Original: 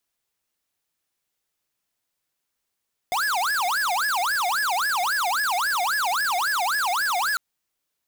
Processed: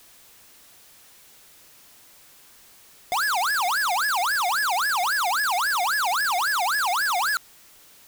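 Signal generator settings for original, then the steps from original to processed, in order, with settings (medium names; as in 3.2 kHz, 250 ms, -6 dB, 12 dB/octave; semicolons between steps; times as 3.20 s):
siren wail 700–1710 Hz 3.7 per s square -23.5 dBFS 4.25 s
jump at every zero crossing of -45.5 dBFS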